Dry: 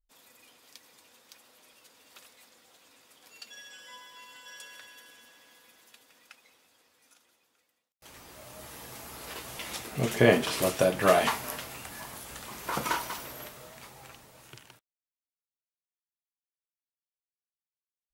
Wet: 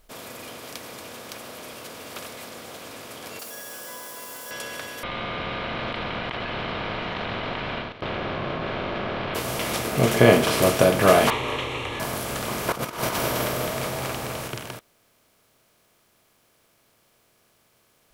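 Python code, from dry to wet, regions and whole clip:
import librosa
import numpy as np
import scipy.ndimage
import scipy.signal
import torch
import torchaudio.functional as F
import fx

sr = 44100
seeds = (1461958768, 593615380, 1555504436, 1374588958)

y = fx.chain(x, sr, fx.crossing_spikes(level_db=-43.0),
    fx.highpass(hz=760.0, slope=6),
    fx.peak_eq(hz=2800.0, db=-14.5, octaves=1.8), at=(3.39, 4.51))
y = fx.chain(y, sr, fx.steep_lowpass(hz=3300.0, slope=48),
    fx.ring_mod(carrier_hz=460.0),
    fx.env_flatten(amount_pct=100), at=(5.03, 9.35))
y = fx.chain(y, sr, fx.leveller(passes=3),
    fx.ladder_lowpass(hz=4300.0, resonance_pct=50),
    fx.fixed_phaser(hz=1000.0, stages=8), at=(11.3, 12.0))
y = fx.chain(y, sr, fx.over_compress(threshold_db=-39.0, ratio=-0.5),
    fx.echo_single(ms=207, db=-5.0), at=(12.72, 14.48))
y = fx.bin_compress(y, sr, power=0.6)
y = fx.low_shelf(y, sr, hz=90.0, db=6.5)
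y = fx.notch(y, sr, hz=1800.0, q=19.0)
y = F.gain(torch.from_numpy(y), 3.5).numpy()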